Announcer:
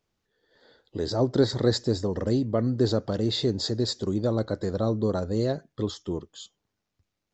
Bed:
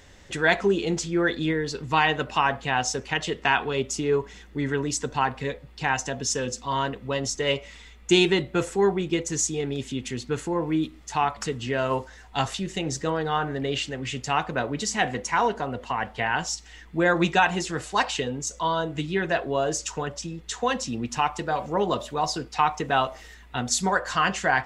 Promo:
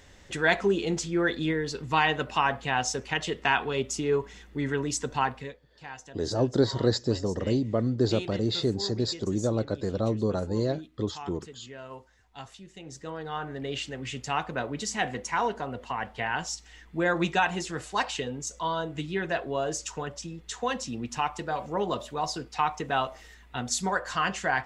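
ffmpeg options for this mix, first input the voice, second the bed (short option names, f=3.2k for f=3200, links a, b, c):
-filter_complex "[0:a]adelay=5200,volume=-1.5dB[a];[1:a]volume=10.5dB,afade=t=out:st=5.25:d=0.32:silence=0.177828,afade=t=in:st=12.75:d=1.2:silence=0.223872[b];[a][b]amix=inputs=2:normalize=0"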